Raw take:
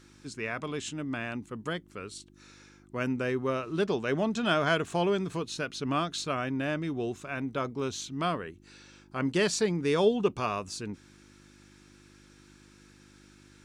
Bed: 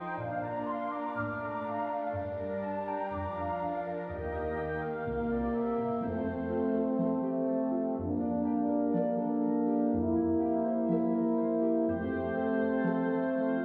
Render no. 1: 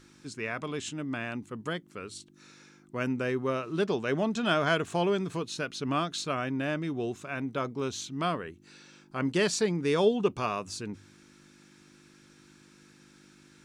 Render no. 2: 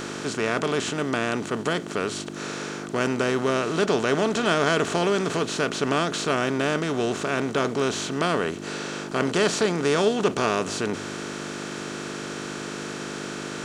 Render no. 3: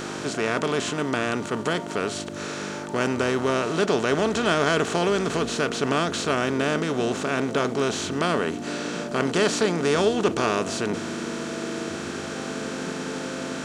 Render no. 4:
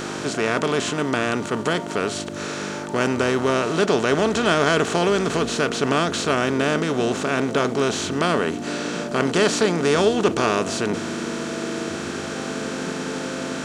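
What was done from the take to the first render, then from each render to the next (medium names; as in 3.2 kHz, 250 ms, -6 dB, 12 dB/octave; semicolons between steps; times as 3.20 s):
de-hum 50 Hz, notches 2
spectral levelling over time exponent 0.4
add bed -5 dB
trim +3 dB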